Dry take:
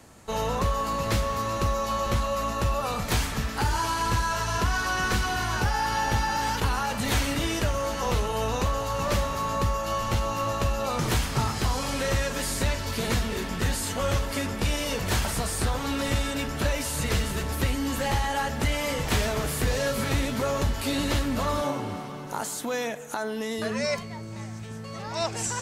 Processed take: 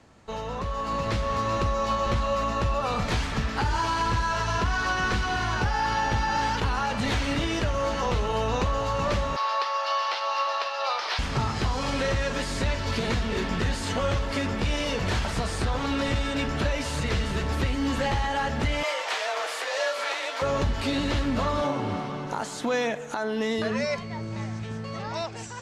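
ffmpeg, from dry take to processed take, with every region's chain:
-filter_complex "[0:a]asettb=1/sr,asplit=3[s0][s1][s2];[s0]atrim=end=9.364[s3];[s1]atrim=start=9.36:end=11.19,asetpts=PTS-STARTPTS,afade=t=in:d=0.004:c=qsin,afade=t=out:st=1.826:d=0.004:c=qsin,highpass=f=640:w=0.5412,highpass=f=640:w=1.3066,highshelf=f=6100:t=q:w=3:g=-7[s4];[s2]atrim=start=11.186[s5];[s3][s4]acrossfade=d=0.004:c1=hsin:c2=qsin[s6];[s6][s5]acrossfade=d=0.004:c1=qsin:c2=hsin,asettb=1/sr,asplit=3[s7][s8][s9];[s7]atrim=end=18.834[s10];[s8]atrim=start=18.83:end=20.42,asetpts=PTS-STARTPTS,afade=t=in:d=0.004:c=qsin,afade=t=out:st=1.586:d=0.004:c=qsin,highpass=f=540:w=0.5412,highpass=f=540:w=1.3066,afreqshift=25[s11];[s9]atrim=start=20.416[s12];[s10][s11]acrossfade=d=0.004:c1=hsin:c2=qsin[s13];[s13][s12]acrossfade=d=0.004:c1=qsin:c2=hsin,alimiter=limit=0.0891:level=0:latency=1:release=288,lowpass=4900,dynaudnorm=f=250:g=7:m=2.51,volume=0.668"

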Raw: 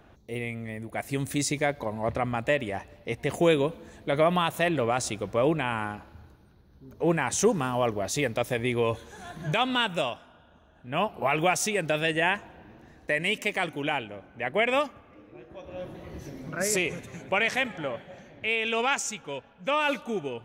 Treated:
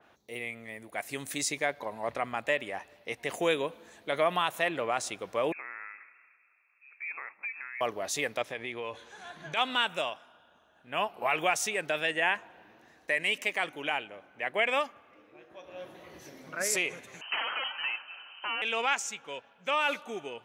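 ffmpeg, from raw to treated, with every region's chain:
-filter_complex "[0:a]asettb=1/sr,asplit=3[s0][s1][s2];[s0]atrim=end=5.524[s3];[s1]atrim=start=5.52:end=7.81,asetpts=PTS-STARTPTS,afade=t=in:d=0.004:c=qsin,afade=t=out:st=2.286:d=0.004:c=qsin,highpass=400,acompressor=threshold=0.00708:ratio=2:attack=3.2:release=140:knee=1:detection=peak,lowpass=f=2400:t=q:w=0.5098,lowpass=f=2400:t=q:w=0.6013,lowpass=f=2400:t=q:w=0.9,lowpass=f=2400:t=q:w=2.563,afreqshift=-2800[s4];[s2]atrim=start=7.806[s5];[s3][s4]acrossfade=d=0.004:c1=hsin:c2=qsin[s6];[s6][s5]acrossfade=d=0.004:c1=qsin:c2=hsin,asettb=1/sr,asplit=3[s7][s8][s9];[s7]atrim=end=8.424[s10];[s8]atrim=start=8.42:end=9.57,asetpts=PTS-STARTPTS,afade=t=in:d=0.004:c=qsin,afade=t=out:st=1.146:d=0.004:c=qsin,lowpass=3400,aemphasis=mode=production:type=50fm,acompressor=threshold=0.0355:ratio=2.5:attack=3.2:release=140:knee=1:detection=peak[s11];[s9]atrim=start=9.566[s12];[s10][s11]acrossfade=d=0.004:c1=hsin:c2=qsin[s13];[s13][s12]acrossfade=d=0.004:c1=qsin:c2=hsin,asettb=1/sr,asplit=3[s14][s15][s16];[s14]atrim=end=17.214[s17];[s15]atrim=start=17.21:end=18.62,asetpts=PTS-STARTPTS,afade=t=in:d=0.004:c=qsin,afade=t=out:st=1.406:d=0.004:c=qsin,highshelf=f=2100:g=10.5,aeval=exprs='0.0708*(abs(mod(val(0)/0.0708+3,4)-2)-1)':c=same,lowpass=f=2700:t=q:w=0.5098,lowpass=f=2700:t=q:w=0.6013,lowpass=f=2700:t=q:w=0.9,lowpass=f=2700:t=q:w=2.563,afreqshift=-3200[s18];[s16]atrim=start=18.616[s19];[s17][s18]acrossfade=d=0.004:c1=hsin:c2=qsin[s20];[s20][s19]acrossfade=d=0.004:c1=qsin:c2=hsin,highpass=f=840:p=1,adynamicequalizer=threshold=0.00794:dfrequency=3300:dqfactor=0.7:tfrequency=3300:tqfactor=0.7:attack=5:release=100:ratio=0.375:range=3:mode=cutabove:tftype=highshelf"

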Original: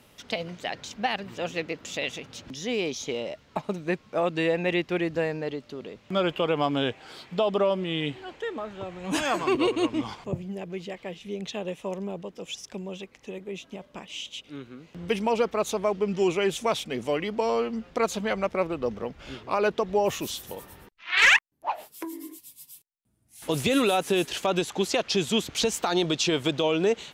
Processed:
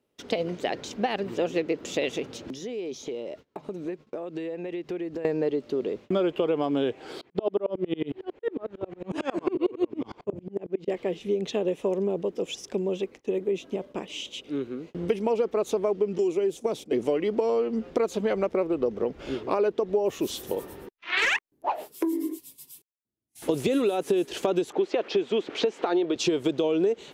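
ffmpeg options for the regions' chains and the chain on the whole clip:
-filter_complex "[0:a]asettb=1/sr,asplit=3[s0][s1][s2];[s0]atrim=end=2.374[s3];[s1]atrim=start=2.37:end=5.25,asetpts=PTS-STARTPTS,afade=t=in:d=0.004:c=qsin,afade=t=out:st=2.876:d=0.004:c=qsin,bandreject=f=50:t=h:w=6,bandreject=f=100:t=h:w=6,bandreject=f=150:t=h:w=6,acompressor=threshold=0.0112:ratio=16:attack=3.2:release=140:knee=1:detection=peak[s4];[s2]atrim=start=5.246[s5];[s3][s4]acrossfade=d=0.004:c1=hsin:c2=qsin[s6];[s6][s5]acrossfade=d=0.004:c1=qsin:c2=hsin,asettb=1/sr,asplit=3[s7][s8][s9];[s7]atrim=end=7.214[s10];[s8]atrim=start=7.21:end=10.88,asetpts=PTS-STARTPTS,afade=t=in:d=0.004:c=qsin,afade=t=out:st=3.666:d=0.004:c=qsin,aemphasis=mode=reproduction:type=50fm,aeval=exprs='val(0)*pow(10,-33*if(lt(mod(-11*n/s,1),2*abs(-11)/1000),1-mod(-11*n/s,1)/(2*abs(-11)/1000),(mod(-11*n/s,1)-2*abs(-11)/1000)/(1-2*abs(-11)/1000))/20)':c=same[s11];[s9]atrim=start=10.876[s12];[s10][s11]acrossfade=d=0.004:c1=hsin:c2=qsin[s13];[s13][s12]acrossfade=d=0.004:c1=qsin:c2=hsin,asettb=1/sr,asplit=3[s14][s15][s16];[s14]atrim=end=16.184[s17];[s15]atrim=start=16.18:end=16.93,asetpts=PTS-STARTPTS,afade=t=in:d=0.004:c=qsin,afade=t=out:st=0.746:d=0.004:c=qsin,agate=range=0.282:threshold=0.0141:ratio=16:release=100:detection=peak,bass=f=250:g=-3,treble=f=4000:g=9,acrossover=split=130|410|990[s18][s19][s20][s21];[s18]acompressor=threshold=0.00126:ratio=3[s22];[s19]acompressor=threshold=0.0251:ratio=3[s23];[s20]acompressor=threshold=0.01:ratio=3[s24];[s21]acompressor=threshold=0.00562:ratio=3[s25];[s22][s23][s24][s25]amix=inputs=4:normalize=0[s26];[s16]atrim=start=16.926[s27];[s17][s26]acrossfade=d=0.004:c1=hsin:c2=qsin[s28];[s28][s27]acrossfade=d=0.004:c1=qsin:c2=hsin,asettb=1/sr,asplit=3[s29][s30][s31];[s29]atrim=end=24.724[s32];[s30]atrim=start=24.72:end=26.16,asetpts=PTS-STARTPTS,afade=t=in:d=0.004:c=qsin,afade=t=out:st=1.436:d=0.004:c=qsin,aeval=exprs='val(0)+0.5*0.00891*sgn(val(0))':c=same,highpass=300,lowpass=2300,adynamicequalizer=threshold=0.00708:dfrequency=1800:dqfactor=0.7:tfrequency=1800:tqfactor=0.7:attack=5:release=100:ratio=0.375:range=2:mode=boostabove:tftype=highshelf[s33];[s31]atrim=start=26.156[s34];[s32][s33]acrossfade=d=0.004:c1=hsin:c2=qsin[s35];[s35][s34]acrossfade=d=0.004:c1=qsin:c2=hsin,agate=range=0.0562:threshold=0.00282:ratio=16:detection=peak,equalizer=f=380:t=o:w=1.4:g=13.5,acompressor=threshold=0.0794:ratio=6"

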